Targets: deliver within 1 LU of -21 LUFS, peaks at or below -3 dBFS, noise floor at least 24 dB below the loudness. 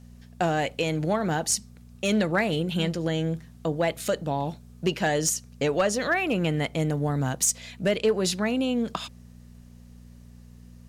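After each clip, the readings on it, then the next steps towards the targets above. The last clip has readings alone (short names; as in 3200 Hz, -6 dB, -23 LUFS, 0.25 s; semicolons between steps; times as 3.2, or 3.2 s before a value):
clipped 0.2%; flat tops at -15.5 dBFS; hum 60 Hz; harmonics up to 240 Hz; hum level -47 dBFS; loudness -26.5 LUFS; peak -15.5 dBFS; loudness target -21.0 LUFS
-> clip repair -15.5 dBFS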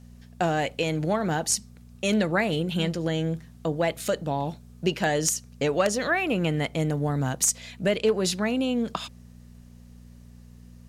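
clipped 0.0%; hum 60 Hz; harmonics up to 240 Hz; hum level -46 dBFS
-> de-hum 60 Hz, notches 4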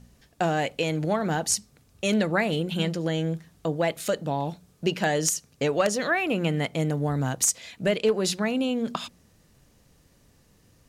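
hum none; loudness -26.5 LUFS; peak -6.5 dBFS; loudness target -21.0 LUFS
-> gain +5.5 dB; limiter -3 dBFS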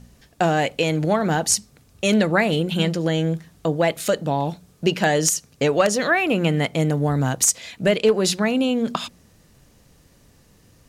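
loudness -21.0 LUFS; peak -3.0 dBFS; noise floor -55 dBFS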